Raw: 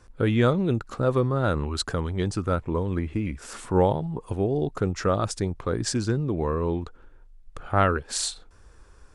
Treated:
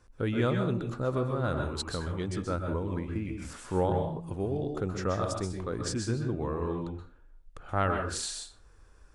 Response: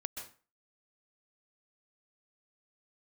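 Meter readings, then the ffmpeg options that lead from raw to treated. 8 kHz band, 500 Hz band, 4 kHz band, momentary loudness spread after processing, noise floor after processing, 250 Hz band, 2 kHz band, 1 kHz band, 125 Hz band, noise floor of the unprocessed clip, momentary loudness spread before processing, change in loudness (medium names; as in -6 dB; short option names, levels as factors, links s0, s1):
-6.0 dB, -6.0 dB, -6.0 dB, 7 LU, -57 dBFS, -6.0 dB, -5.5 dB, -6.0 dB, -6.0 dB, -52 dBFS, 8 LU, -6.0 dB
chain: -filter_complex "[1:a]atrim=start_sample=2205[s0];[0:a][s0]afir=irnorm=-1:irlink=0,volume=0.562"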